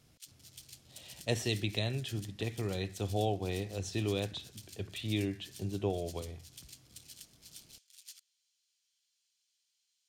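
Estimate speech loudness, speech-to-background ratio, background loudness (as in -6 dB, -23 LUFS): -36.0 LUFS, 16.5 dB, -52.5 LUFS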